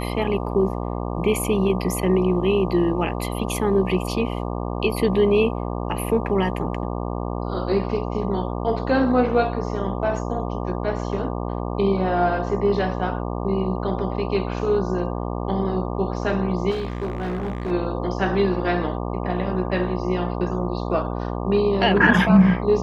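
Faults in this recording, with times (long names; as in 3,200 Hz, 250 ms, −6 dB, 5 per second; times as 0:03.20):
mains buzz 60 Hz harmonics 20 −27 dBFS
0:16.70–0:17.72: clipping −22.5 dBFS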